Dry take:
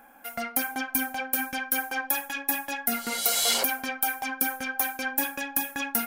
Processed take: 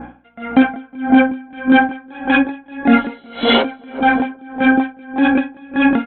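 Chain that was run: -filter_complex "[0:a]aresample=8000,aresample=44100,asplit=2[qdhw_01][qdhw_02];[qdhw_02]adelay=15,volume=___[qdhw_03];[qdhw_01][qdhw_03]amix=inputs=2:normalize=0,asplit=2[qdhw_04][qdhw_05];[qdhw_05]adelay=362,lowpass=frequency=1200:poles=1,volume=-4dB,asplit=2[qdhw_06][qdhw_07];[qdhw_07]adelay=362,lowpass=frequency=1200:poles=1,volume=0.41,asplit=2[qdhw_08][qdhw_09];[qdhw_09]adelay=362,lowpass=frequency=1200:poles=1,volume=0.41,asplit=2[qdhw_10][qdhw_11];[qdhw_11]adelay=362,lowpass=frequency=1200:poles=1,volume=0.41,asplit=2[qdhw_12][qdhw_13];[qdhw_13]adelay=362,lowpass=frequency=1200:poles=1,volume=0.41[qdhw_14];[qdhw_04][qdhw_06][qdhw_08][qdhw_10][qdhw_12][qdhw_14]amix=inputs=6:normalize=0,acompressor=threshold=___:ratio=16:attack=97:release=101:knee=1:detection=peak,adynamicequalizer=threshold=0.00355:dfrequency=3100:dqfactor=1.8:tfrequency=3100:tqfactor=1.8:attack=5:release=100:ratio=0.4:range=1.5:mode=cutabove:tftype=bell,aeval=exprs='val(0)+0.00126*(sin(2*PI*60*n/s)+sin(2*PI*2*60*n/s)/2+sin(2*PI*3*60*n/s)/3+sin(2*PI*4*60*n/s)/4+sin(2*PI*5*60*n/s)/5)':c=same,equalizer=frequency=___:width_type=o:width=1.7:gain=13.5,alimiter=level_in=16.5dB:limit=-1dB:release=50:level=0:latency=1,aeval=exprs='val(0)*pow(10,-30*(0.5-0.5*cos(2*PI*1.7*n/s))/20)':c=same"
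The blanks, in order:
-10.5dB, -29dB, 270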